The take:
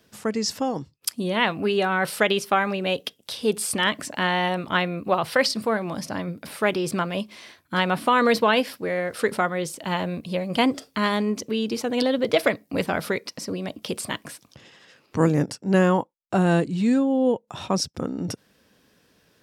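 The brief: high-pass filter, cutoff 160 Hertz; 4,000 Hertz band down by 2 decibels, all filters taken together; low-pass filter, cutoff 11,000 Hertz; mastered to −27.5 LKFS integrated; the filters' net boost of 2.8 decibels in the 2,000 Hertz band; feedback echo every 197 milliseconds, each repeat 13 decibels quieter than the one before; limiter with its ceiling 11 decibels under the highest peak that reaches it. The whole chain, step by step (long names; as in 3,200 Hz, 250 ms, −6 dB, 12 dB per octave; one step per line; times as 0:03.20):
high-pass filter 160 Hz
low-pass filter 11,000 Hz
parametric band 2,000 Hz +4.5 dB
parametric band 4,000 Hz −5 dB
brickwall limiter −14.5 dBFS
repeating echo 197 ms, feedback 22%, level −13 dB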